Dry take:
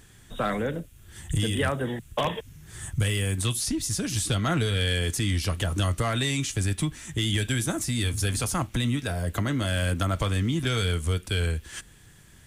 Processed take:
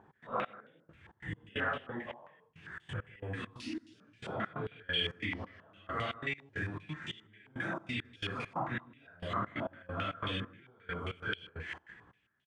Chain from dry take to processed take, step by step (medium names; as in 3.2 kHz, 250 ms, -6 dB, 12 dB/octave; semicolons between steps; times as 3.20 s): phase randomisation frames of 200 ms; high-pass 100 Hz; bass shelf 150 Hz -8 dB; compression, threshold -32 dBFS, peak gain reduction 9.5 dB; trance gate "x.xx....xx.x..x" 135 bpm -24 dB; on a send: delay 156 ms -20 dB; on the sum: step-sequenced low-pass 7.5 Hz 890–3100 Hz; trim -2.5 dB